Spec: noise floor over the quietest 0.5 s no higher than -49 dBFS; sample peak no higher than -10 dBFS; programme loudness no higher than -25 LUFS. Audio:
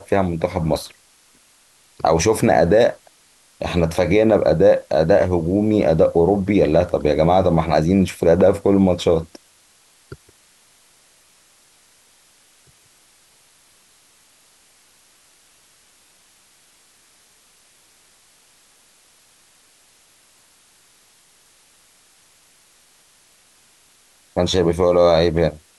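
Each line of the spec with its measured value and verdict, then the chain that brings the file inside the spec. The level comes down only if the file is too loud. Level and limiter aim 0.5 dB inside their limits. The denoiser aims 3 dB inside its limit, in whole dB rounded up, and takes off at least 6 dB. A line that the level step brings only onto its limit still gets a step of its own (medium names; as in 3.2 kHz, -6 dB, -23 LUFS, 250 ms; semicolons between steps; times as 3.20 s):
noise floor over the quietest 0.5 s -55 dBFS: pass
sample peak -4.5 dBFS: fail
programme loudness -17.0 LUFS: fail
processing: trim -8.5 dB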